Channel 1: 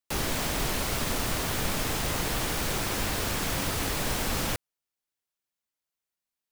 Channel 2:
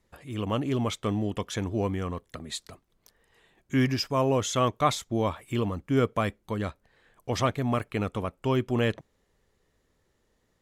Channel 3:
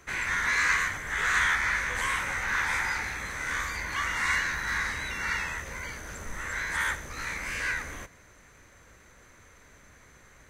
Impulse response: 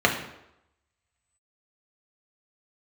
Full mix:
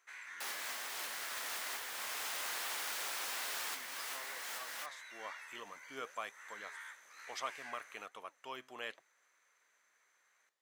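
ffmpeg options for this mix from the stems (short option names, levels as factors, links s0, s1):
-filter_complex "[0:a]adelay=300,volume=0.668[s0];[1:a]volume=0.501,afade=t=in:st=4.96:d=0.44:silence=0.237137,asplit=2[s1][s2];[2:a]acompressor=threshold=0.0282:ratio=3,volume=0.266[s3];[s2]apad=whole_len=300463[s4];[s0][s4]sidechaincompress=threshold=0.00562:ratio=8:attack=29:release=528[s5];[s5][s1][s3]amix=inputs=3:normalize=0,highpass=880,flanger=delay=2.2:depth=5.6:regen=87:speed=1.1:shape=sinusoidal"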